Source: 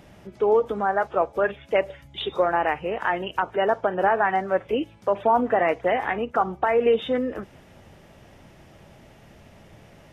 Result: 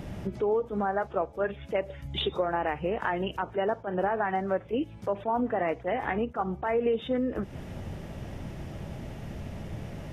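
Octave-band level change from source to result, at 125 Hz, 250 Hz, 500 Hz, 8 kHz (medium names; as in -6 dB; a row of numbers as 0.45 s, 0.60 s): +4.5 dB, -1.5 dB, -6.5 dB, no reading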